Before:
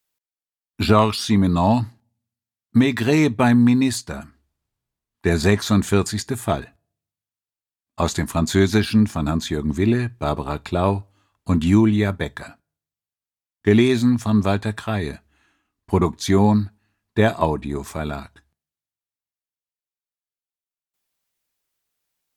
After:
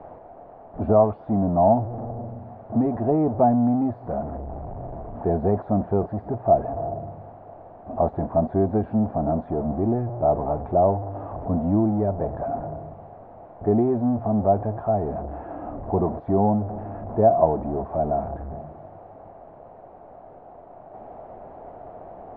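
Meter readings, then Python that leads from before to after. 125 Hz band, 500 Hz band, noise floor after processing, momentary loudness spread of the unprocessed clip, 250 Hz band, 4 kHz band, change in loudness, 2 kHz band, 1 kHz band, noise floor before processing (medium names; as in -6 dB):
-5.0 dB, +1.5 dB, -46 dBFS, 12 LU, -5.0 dB, under -40 dB, -3.5 dB, under -20 dB, +1.5 dB, under -85 dBFS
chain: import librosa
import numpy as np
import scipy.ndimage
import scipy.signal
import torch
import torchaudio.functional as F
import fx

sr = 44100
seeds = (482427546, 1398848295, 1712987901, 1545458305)

y = x + 0.5 * 10.0 ** (-18.5 / 20.0) * np.sign(x)
y = fx.ladder_lowpass(y, sr, hz=760.0, resonance_pct=70)
y = F.gain(torch.from_numpy(y), 3.0).numpy()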